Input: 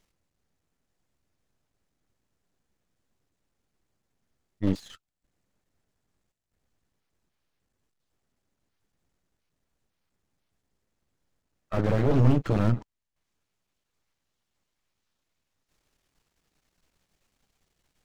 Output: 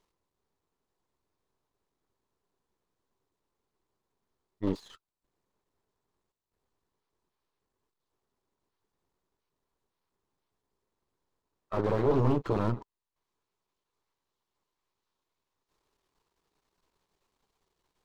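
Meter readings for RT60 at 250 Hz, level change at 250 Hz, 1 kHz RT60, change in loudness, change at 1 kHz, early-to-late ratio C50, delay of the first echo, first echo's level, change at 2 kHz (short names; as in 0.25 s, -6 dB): none, -5.0 dB, none, -4.5 dB, +0.5 dB, none, none, none, -5.5 dB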